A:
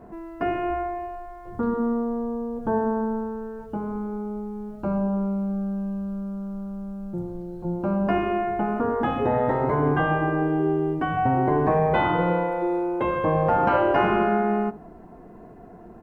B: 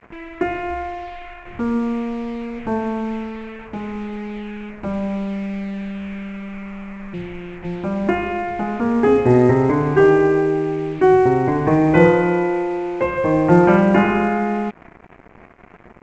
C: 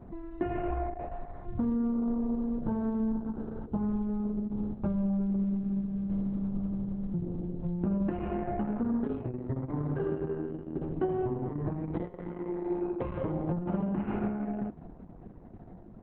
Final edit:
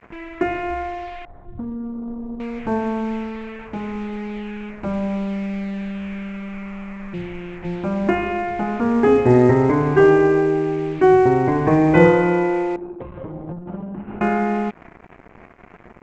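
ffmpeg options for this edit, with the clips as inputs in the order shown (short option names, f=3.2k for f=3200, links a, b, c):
-filter_complex "[2:a]asplit=2[a][b];[1:a]asplit=3[c][d][e];[c]atrim=end=1.252[f];[a]atrim=start=1.248:end=2.402[g];[d]atrim=start=2.398:end=12.762[h];[b]atrim=start=12.758:end=14.212[i];[e]atrim=start=14.208[j];[f][g]acrossfade=d=0.004:c1=hsin:c2=hsin[k];[k][h]acrossfade=d=0.004:c1=hsin:c2=hsin[l];[l][i]acrossfade=d=0.004:c1=hsin:c2=hsin[m];[m][j]acrossfade=d=0.004:c1=hsin:c2=hsin"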